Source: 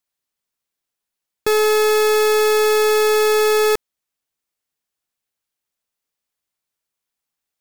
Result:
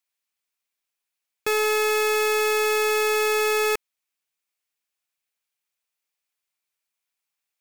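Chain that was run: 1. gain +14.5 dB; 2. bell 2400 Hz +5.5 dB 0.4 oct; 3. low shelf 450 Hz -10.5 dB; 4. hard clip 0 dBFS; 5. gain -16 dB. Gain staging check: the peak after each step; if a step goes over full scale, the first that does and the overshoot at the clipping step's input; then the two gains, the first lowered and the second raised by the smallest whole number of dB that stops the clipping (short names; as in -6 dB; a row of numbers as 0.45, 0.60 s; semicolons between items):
-0.5, +2.0, +4.0, 0.0, -16.0 dBFS; step 2, 4.0 dB; step 1 +10.5 dB, step 5 -12 dB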